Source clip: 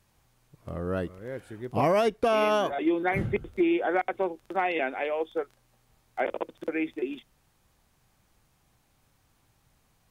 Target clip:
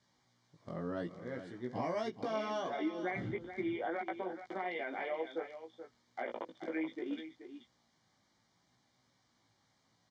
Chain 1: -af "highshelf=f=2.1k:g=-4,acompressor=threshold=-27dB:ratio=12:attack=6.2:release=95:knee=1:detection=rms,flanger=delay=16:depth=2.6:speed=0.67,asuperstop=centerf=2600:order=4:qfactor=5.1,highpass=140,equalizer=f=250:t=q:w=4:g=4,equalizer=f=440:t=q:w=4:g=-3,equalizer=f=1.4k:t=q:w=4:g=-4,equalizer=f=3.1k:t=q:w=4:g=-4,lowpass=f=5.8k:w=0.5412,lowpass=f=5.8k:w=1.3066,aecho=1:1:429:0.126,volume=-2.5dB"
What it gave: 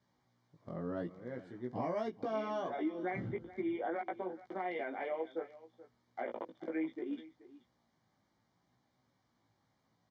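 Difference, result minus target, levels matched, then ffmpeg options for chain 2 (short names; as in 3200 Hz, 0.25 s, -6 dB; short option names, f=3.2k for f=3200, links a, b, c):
4000 Hz band -7.0 dB; echo-to-direct -7 dB
-af "highshelf=f=2.1k:g=7,acompressor=threshold=-27dB:ratio=12:attack=6.2:release=95:knee=1:detection=rms,flanger=delay=16:depth=2.6:speed=0.67,asuperstop=centerf=2600:order=4:qfactor=5.1,highpass=140,equalizer=f=250:t=q:w=4:g=4,equalizer=f=440:t=q:w=4:g=-3,equalizer=f=1.4k:t=q:w=4:g=-4,equalizer=f=3.1k:t=q:w=4:g=-4,lowpass=f=5.8k:w=0.5412,lowpass=f=5.8k:w=1.3066,aecho=1:1:429:0.282,volume=-2.5dB"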